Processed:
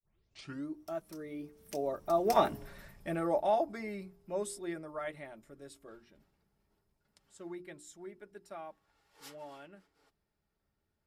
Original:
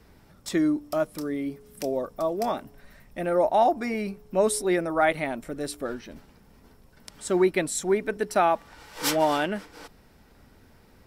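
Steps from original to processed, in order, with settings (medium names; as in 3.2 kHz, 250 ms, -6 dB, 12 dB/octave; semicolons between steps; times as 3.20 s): tape start-up on the opening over 0.73 s; Doppler pass-by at 2.55 s, 17 m/s, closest 3.3 m; hum notches 60/120/180/240/300/360 Hz; comb of notches 250 Hz; trim +6 dB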